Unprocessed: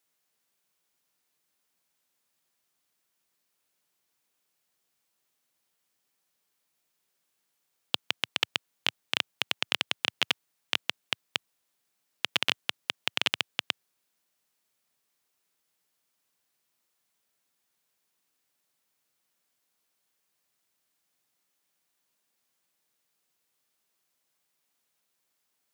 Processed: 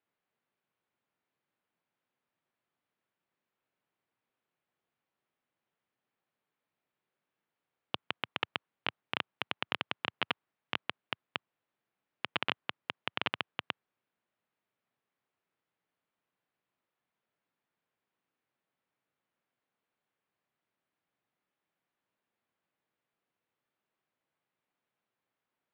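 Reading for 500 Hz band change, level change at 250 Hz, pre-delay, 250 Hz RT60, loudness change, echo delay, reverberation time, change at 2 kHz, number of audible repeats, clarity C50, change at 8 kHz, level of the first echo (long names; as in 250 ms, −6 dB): −1.0 dB, −0.5 dB, no reverb audible, no reverb audible, −7.0 dB, no echo audible, no reverb audible, −5.0 dB, no echo audible, no reverb audible, below −25 dB, no echo audible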